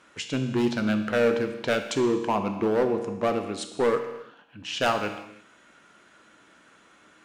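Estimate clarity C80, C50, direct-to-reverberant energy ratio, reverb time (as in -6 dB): 10.0 dB, 8.5 dB, 6.0 dB, not exponential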